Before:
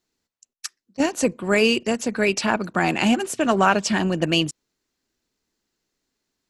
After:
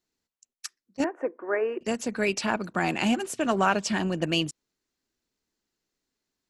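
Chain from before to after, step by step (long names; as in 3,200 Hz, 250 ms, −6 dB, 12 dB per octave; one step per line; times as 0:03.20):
0:01.04–0:01.81: elliptic band-pass filter 320–1,800 Hz, stop band 40 dB
level −5.5 dB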